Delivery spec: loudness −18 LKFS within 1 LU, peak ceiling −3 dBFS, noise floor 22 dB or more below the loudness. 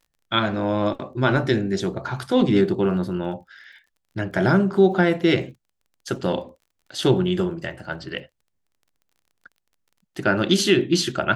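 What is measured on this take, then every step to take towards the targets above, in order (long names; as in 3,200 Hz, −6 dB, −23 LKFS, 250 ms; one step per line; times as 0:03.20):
crackle rate 24 per second; integrated loudness −22.0 LKFS; sample peak −4.0 dBFS; target loudness −18.0 LKFS
→ click removal
level +4 dB
brickwall limiter −3 dBFS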